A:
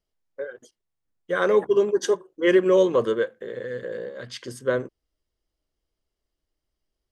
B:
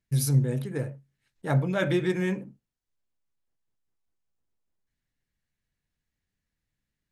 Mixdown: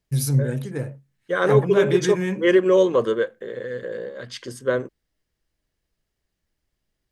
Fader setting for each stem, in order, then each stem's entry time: +1.5, +2.5 decibels; 0.00, 0.00 seconds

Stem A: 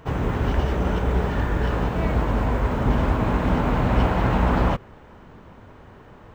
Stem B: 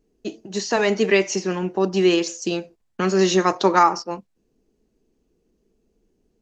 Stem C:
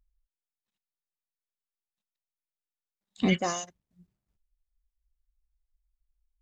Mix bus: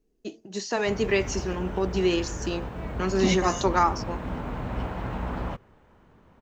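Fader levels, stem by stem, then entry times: −11.5, −6.5, −0.5 decibels; 0.80, 0.00, 0.00 seconds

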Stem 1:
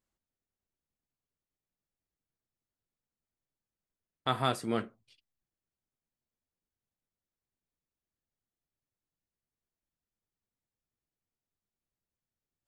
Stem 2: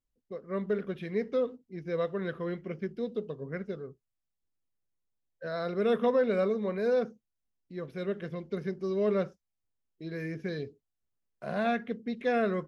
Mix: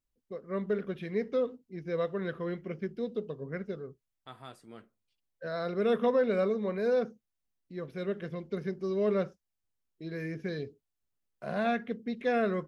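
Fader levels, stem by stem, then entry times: −18.0, −0.5 decibels; 0.00, 0.00 seconds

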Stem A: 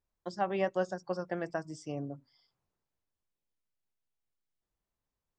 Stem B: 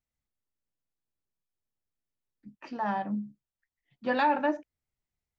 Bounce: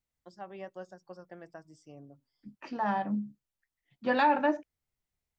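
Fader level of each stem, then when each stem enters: −12.5, +0.5 decibels; 0.00, 0.00 seconds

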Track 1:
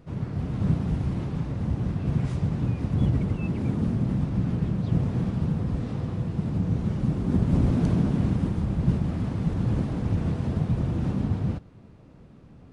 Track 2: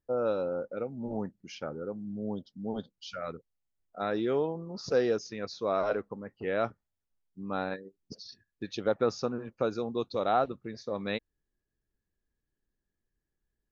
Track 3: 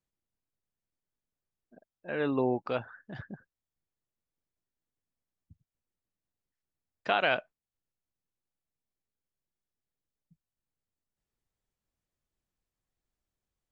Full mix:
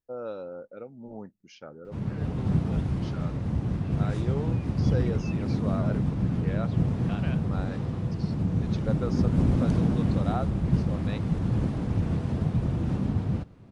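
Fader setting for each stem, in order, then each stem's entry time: −1.0, −6.5, −15.0 decibels; 1.85, 0.00, 0.00 seconds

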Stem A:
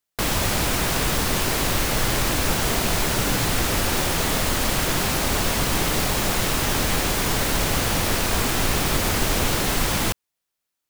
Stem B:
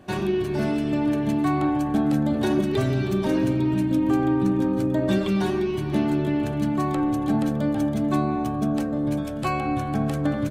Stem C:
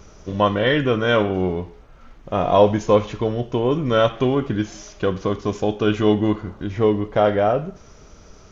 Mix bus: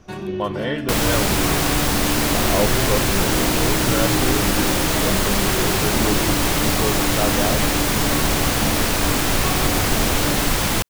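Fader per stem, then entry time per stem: +2.5, −4.0, −7.5 decibels; 0.70, 0.00, 0.00 seconds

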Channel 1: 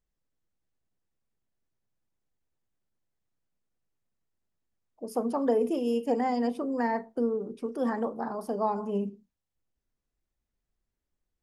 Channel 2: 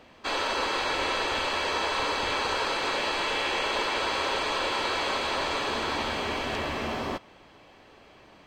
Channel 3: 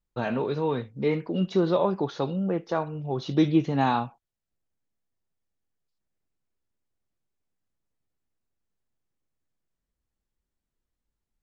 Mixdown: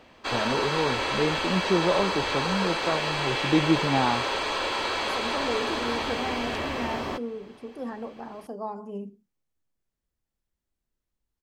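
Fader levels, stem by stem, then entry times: −6.0, 0.0, −1.0 decibels; 0.00, 0.00, 0.15 seconds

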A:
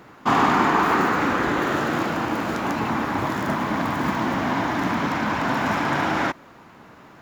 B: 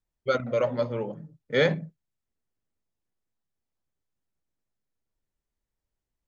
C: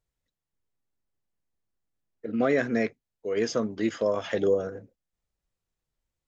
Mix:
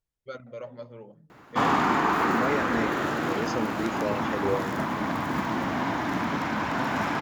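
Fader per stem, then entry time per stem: −4.5, −14.0, −5.0 decibels; 1.30, 0.00, 0.00 seconds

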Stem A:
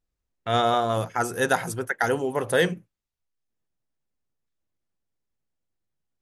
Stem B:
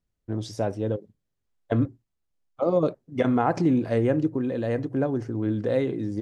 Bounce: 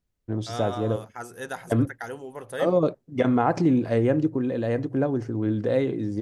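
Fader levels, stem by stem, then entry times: −12.0, +1.0 decibels; 0.00, 0.00 seconds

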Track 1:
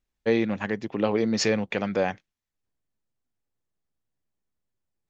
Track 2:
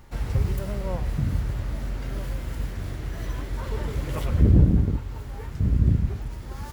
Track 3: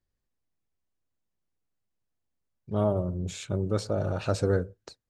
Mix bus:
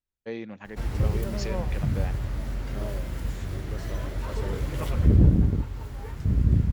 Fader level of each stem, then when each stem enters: −12.5, −1.0, −13.0 decibels; 0.00, 0.65, 0.00 seconds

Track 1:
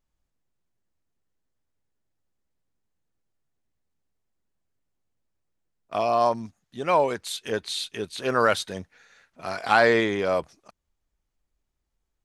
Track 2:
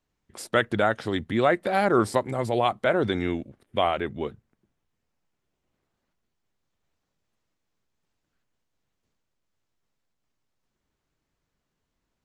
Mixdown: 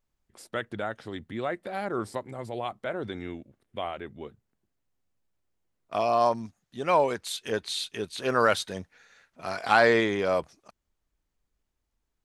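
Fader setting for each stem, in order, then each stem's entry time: −1.5, −10.0 decibels; 0.00, 0.00 seconds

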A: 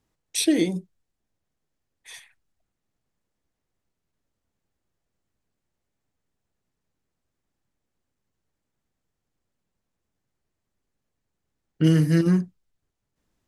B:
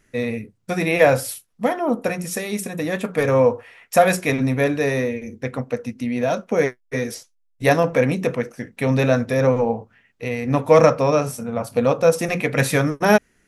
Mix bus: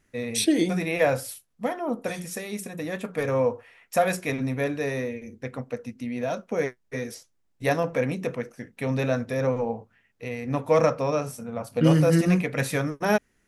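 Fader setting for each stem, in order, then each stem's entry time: −1.0, −7.5 decibels; 0.00, 0.00 seconds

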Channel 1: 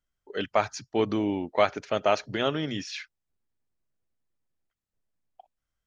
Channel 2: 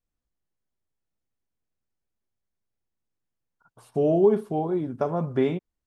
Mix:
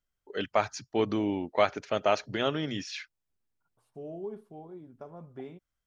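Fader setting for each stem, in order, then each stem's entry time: −2.0, −19.5 decibels; 0.00, 0.00 seconds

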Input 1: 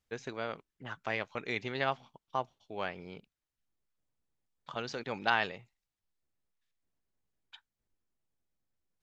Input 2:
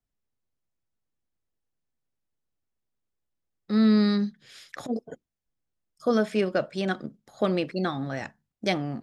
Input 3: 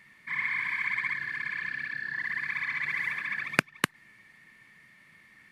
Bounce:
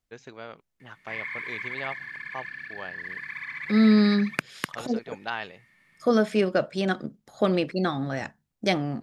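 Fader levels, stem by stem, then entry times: −3.5, +2.0, −4.5 decibels; 0.00, 0.00, 0.80 seconds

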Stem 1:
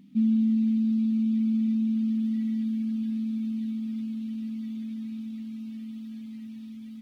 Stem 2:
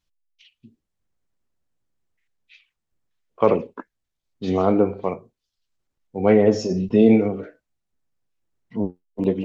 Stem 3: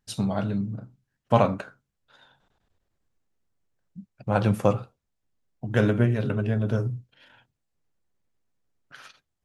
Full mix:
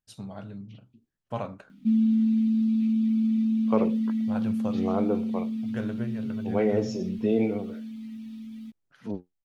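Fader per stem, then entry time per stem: +1.0, −9.0, −13.0 decibels; 1.70, 0.30, 0.00 seconds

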